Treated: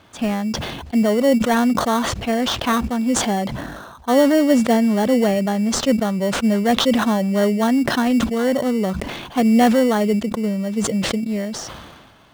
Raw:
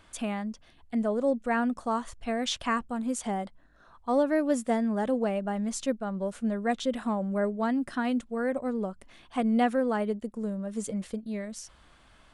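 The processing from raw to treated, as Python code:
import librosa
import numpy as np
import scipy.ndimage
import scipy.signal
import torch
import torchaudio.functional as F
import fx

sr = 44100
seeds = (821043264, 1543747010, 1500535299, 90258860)

p1 = scipy.signal.sosfilt(scipy.signal.cheby1(2, 1.0, [110.0, 4800.0], 'bandpass', fs=sr, output='sos'), x)
p2 = fx.sample_hold(p1, sr, seeds[0], rate_hz=2500.0, jitter_pct=0)
p3 = p1 + F.gain(torch.from_numpy(p2), -4.0).numpy()
p4 = fx.sustainer(p3, sr, db_per_s=37.0)
y = F.gain(torch.from_numpy(p4), 7.0).numpy()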